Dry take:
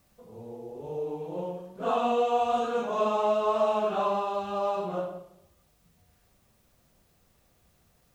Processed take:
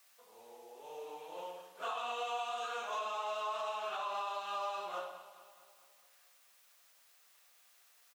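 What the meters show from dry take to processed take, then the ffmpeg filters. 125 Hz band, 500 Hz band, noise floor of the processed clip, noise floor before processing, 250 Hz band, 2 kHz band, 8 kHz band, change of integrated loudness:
under -30 dB, -15.5 dB, -66 dBFS, -66 dBFS, under -25 dB, -2.5 dB, no reading, -11.5 dB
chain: -filter_complex "[0:a]highpass=1300,alimiter=level_in=3.16:limit=0.0631:level=0:latency=1:release=273,volume=0.316,asplit=2[s0][s1];[s1]aecho=0:1:212|424|636|848|1060|1272:0.188|0.107|0.0612|0.0349|0.0199|0.0113[s2];[s0][s2]amix=inputs=2:normalize=0,volume=1.58"

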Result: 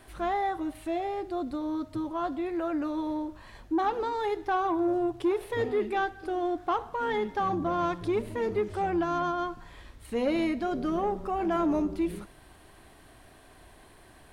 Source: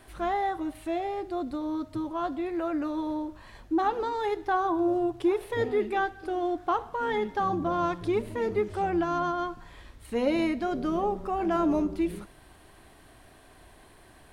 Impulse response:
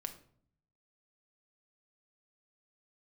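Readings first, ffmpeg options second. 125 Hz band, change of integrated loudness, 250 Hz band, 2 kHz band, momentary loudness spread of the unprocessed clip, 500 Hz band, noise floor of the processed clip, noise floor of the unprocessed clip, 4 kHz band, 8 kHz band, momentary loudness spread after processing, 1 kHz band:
-1.0 dB, -1.0 dB, -1.0 dB, -1.0 dB, 7 LU, -1.0 dB, -54 dBFS, -54 dBFS, -0.5 dB, no reading, 6 LU, -1.0 dB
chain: -af "asoftclip=type=tanh:threshold=0.119"

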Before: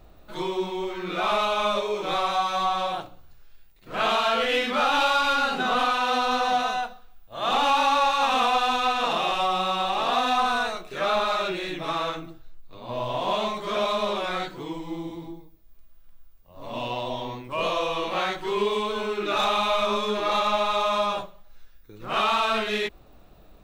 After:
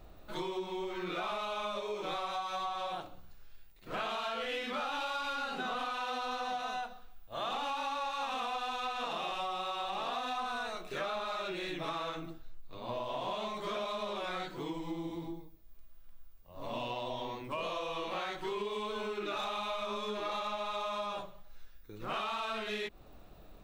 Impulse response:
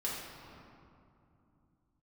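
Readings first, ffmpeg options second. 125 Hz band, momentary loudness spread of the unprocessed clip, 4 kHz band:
-9.0 dB, 12 LU, -12.5 dB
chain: -af "bandreject=f=62.46:t=h:w=4,bandreject=f=124.92:t=h:w=4,bandreject=f=187.38:t=h:w=4,bandreject=f=249.84:t=h:w=4,acompressor=threshold=0.0251:ratio=6,volume=0.75"

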